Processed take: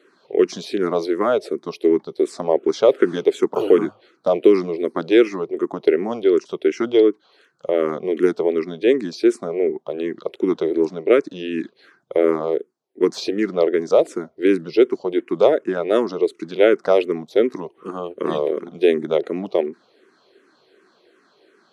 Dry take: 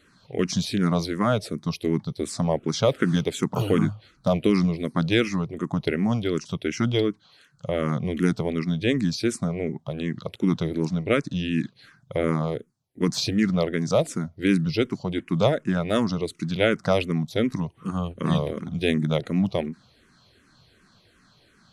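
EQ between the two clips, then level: resonant high-pass 380 Hz, resonance Q 3.9; low-pass 1.1 kHz 6 dB/octave; tilt EQ +2 dB/octave; +4.5 dB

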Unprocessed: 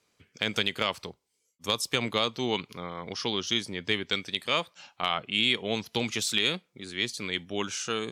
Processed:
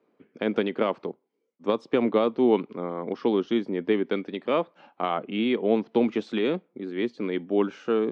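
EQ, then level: high-pass 260 Hz 24 dB/octave; tape spacing loss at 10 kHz 33 dB; tilt EQ -4.5 dB/octave; +6.0 dB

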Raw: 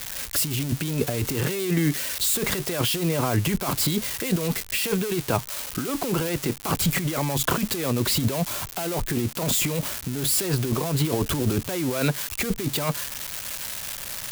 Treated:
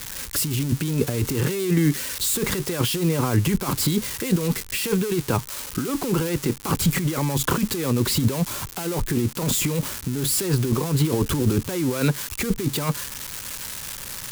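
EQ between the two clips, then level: peaking EQ 660 Hz -10 dB 0.37 oct; peaking EQ 2.7 kHz -4.5 dB 2.3 oct; treble shelf 12 kHz -6.5 dB; +3.5 dB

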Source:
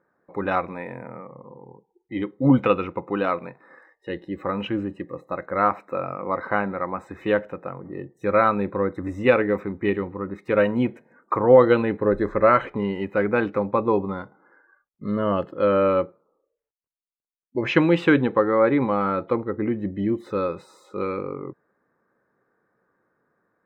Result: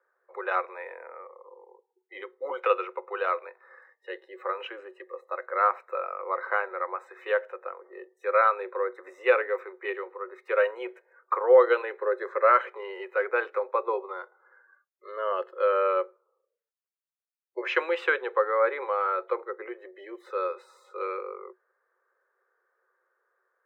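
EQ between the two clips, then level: rippled Chebyshev high-pass 360 Hz, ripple 6 dB; tilt EQ +3 dB/octave; treble shelf 3.1 kHz -12 dB; 0.0 dB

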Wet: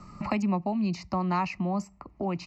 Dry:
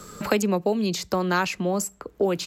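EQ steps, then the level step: tape spacing loss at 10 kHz 26 dB; static phaser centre 2.3 kHz, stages 8; +1.5 dB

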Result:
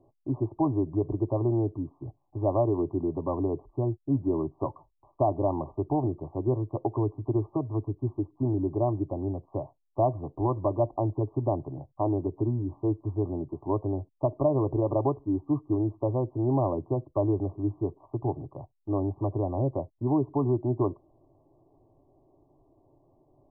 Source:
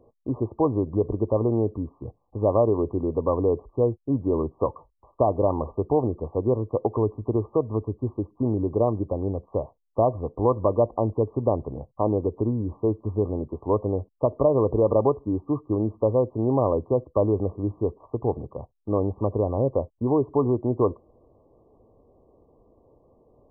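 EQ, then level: low-pass 1 kHz 6 dB/octave; static phaser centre 320 Hz, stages 8; 0.0 dB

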